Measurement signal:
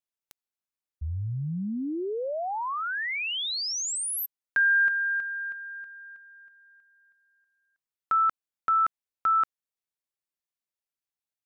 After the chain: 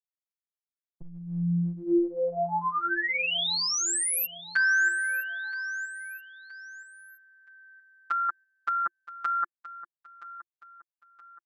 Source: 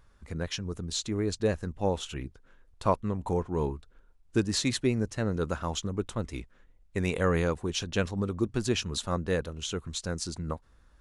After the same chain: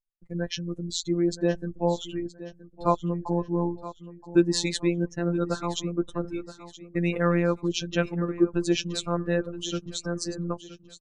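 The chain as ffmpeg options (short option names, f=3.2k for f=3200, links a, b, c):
-filter_complex "[0:a]afftdn=nr=25:nf=-39,agate=range=-27dB:threshold=-52dB:ratio=16:release=81:detection=peak,equalizer=f=320:w=5.9:g=6,afftfilt=real='hypot(re,im)*cos(PI*b)':imag='0':win_size=1024:overlap=0.75,asplit=2[a][b];[b]aecho=0:1:972|1944|2916:0.168|0.0621|0.023[c];[a][c]amix=inputs=2:normalize=0,volume=6dB"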